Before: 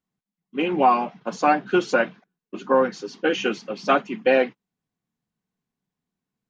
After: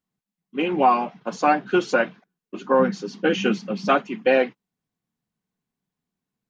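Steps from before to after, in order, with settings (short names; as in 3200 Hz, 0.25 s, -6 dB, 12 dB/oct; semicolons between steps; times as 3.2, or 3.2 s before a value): 2.79–3.89 bell 190 Hz +13.5 dB 0.58 oct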